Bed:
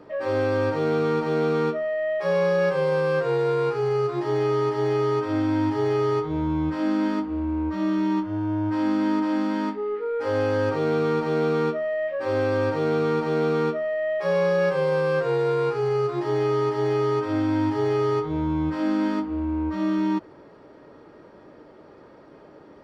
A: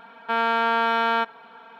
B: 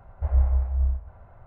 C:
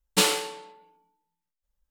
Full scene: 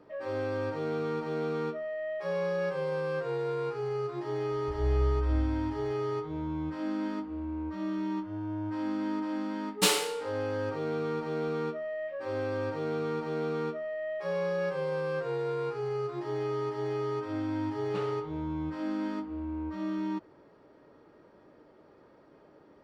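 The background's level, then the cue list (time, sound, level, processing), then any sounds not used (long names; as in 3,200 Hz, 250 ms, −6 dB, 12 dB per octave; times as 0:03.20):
bed −9.5 dB
0:04.46: mix in B −15 dB + flutter between parallel walls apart 7.8 metres, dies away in 1.1 s
0:09.65: mix in C −3.5 dB
0:17.77: mix in C −14.5 dB + low-pass filter 1,600 Hz
not used: A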